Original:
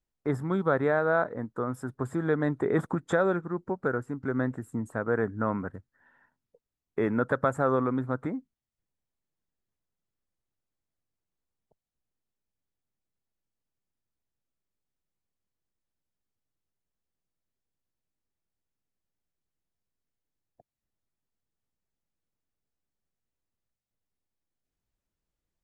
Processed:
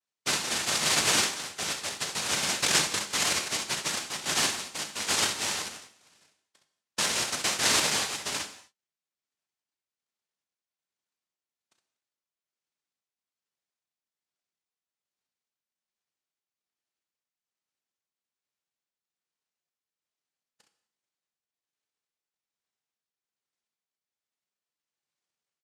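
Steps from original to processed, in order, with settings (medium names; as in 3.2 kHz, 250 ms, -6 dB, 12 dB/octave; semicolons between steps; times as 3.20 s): tremolo triangle 1.2 Hz, depth 50%; on a send: early reflections 35 ms -10 dB, 65 ms -7 dB; on the sum: noise-vocoded speech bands 1; gated-style reverb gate 270 ms falling, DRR 7.5 dB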